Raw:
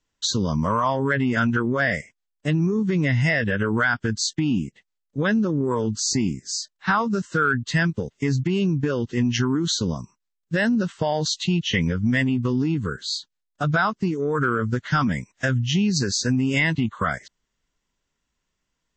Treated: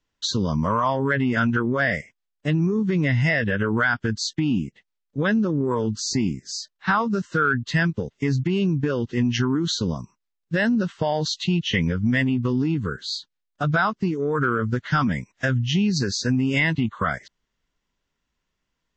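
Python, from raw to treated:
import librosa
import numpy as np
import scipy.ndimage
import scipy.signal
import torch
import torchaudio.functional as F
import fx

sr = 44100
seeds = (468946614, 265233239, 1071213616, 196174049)

y = scipy.signal.sosfilt(scipy.signal.butter(2, 5500.0, 'lowpass', fs=sr, output='sos'), x)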